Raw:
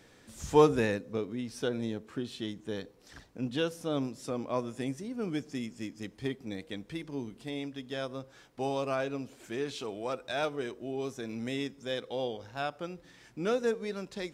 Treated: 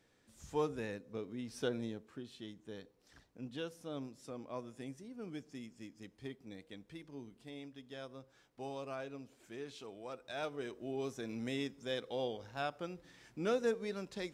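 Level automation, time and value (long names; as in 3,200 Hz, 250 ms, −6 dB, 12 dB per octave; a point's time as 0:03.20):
0:00.78 −13.5 dB
0:01.67 −4 dB
0:02.17 −11.5 dB
0:10.11 −11.5 dB
0:10.90 −4 dB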